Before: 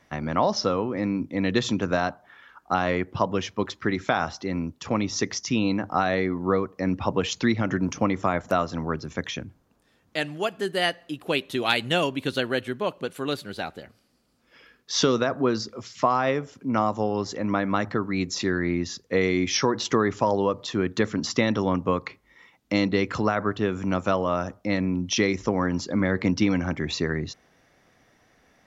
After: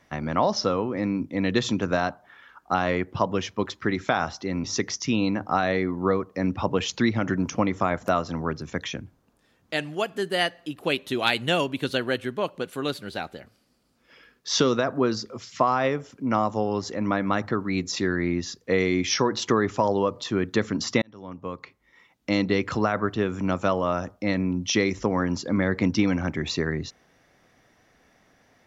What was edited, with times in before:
0:04.64–0:05.07: remove
0:21.45–0:22.90: fade in

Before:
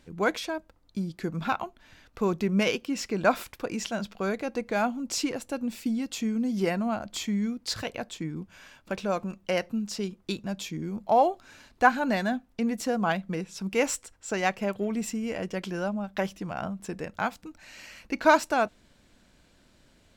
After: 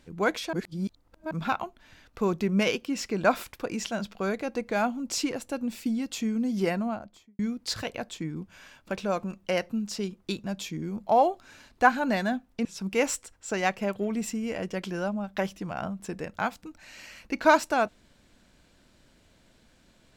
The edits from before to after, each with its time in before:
0:00.53–0:01.31: reverse
0:06.69–0:07.39: fade out and dull
0:12.65–0:13.45: remove

